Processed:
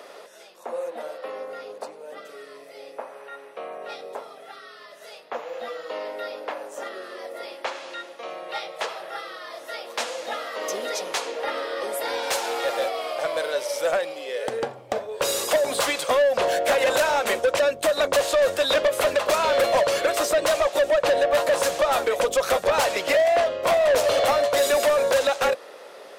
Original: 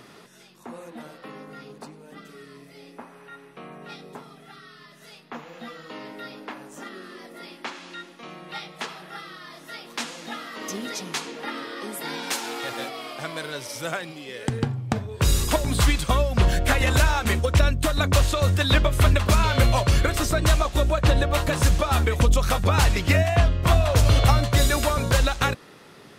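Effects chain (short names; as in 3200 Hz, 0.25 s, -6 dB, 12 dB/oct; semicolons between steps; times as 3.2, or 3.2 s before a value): resonant high-pass 550 Hz, resonance Q 4.4; soft clip -17.5 dBFS, distortion -8 dB; gain +2 dB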